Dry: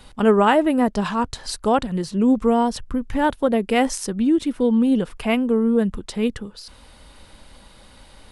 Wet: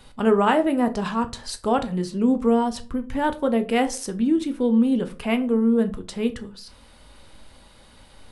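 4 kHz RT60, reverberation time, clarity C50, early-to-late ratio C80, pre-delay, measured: 0.25 s, 0.40 s, 16.5 dB, 22.5 dB, 8 ms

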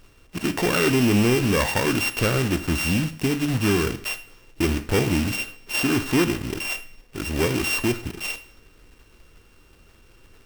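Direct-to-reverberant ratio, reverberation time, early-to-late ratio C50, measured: 10.5 dB, 0.65 s, 14.0 dB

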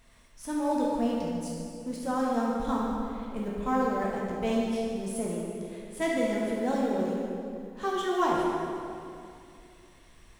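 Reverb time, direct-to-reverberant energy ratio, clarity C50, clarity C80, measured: 2.5 s, −4.0 dB, −1.5 dB, 0.0 dB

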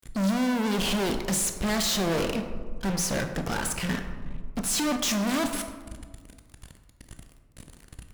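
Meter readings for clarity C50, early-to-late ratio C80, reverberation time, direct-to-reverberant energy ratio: 7.5 dB, 9.0 dB, 1.6 s, 6.0 dB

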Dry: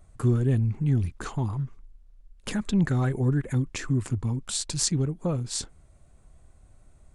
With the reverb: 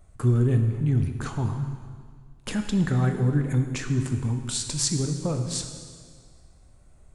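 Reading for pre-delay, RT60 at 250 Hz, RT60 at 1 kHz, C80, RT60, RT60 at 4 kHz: 6 ms, 1.9 s, 1.9 s, 8.0 dB, 1.9 s, 1.8 s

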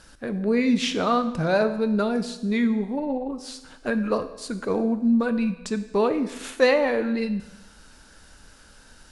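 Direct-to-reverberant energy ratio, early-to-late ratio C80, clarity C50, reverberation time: 9.5 dB, 14.0 dB, 12.0 dB, 1.0 s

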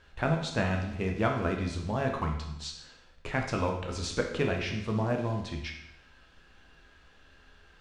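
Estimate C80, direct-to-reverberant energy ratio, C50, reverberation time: 8.5 dB, 1.0 dB, 5.5 dB, 0.80 s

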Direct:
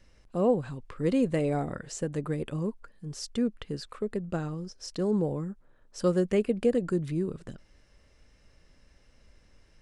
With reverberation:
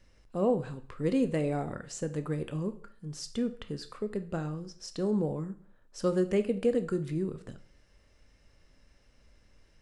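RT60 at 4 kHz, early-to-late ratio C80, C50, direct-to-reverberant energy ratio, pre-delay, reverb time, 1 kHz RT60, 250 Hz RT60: 0.45 s, 19.0 dB, 14.5 dB, 9.5 dB, 7 ms, 0.45 s, 0.45 s, 0.50 s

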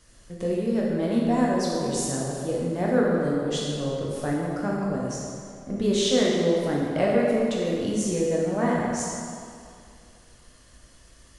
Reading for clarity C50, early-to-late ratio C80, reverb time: −1.5 dB, 0.0 dB, 2.3 s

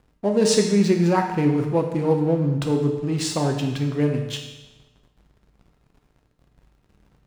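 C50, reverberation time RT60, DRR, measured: 5.5 dB, 1.1 s, 2.5 dB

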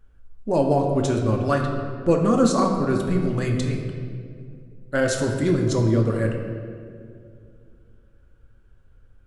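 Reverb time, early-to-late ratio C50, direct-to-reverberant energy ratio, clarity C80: 2.3 s, 4.0 dB, 1.0 dB, 5.5 dB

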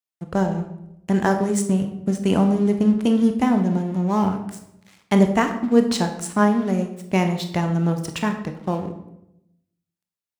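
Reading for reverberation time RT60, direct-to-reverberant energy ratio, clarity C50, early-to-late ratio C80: 0.85 s, 5.5 dB, 8.5 dB, 11.5 dB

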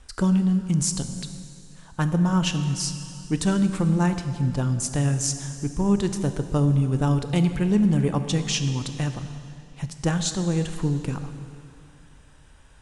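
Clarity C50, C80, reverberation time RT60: 9.0 dB, 10.0 dB, 2.7 s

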